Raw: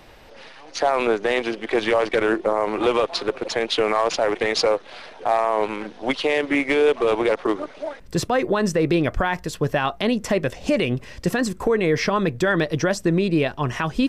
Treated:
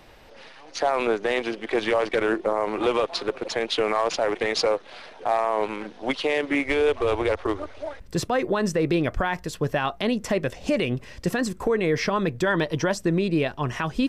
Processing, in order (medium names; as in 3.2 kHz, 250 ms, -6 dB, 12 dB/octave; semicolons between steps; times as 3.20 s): 6.65–8.02 s: resonant low shelf 120 Hz +9.5 dB, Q 3; 12.46–12.93 s: small resonant body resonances 950/3100 Hz, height 12 dB; trim -3 dB